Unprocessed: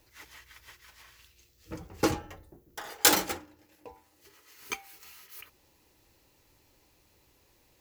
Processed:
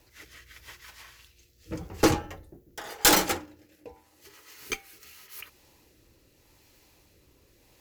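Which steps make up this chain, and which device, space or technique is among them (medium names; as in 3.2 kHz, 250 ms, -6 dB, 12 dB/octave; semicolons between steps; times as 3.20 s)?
overdriven rotary cabinet (valve stage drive 19 dB, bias 0.45; rotary cabinet horn 0.85 Hz); trim +8.5 dB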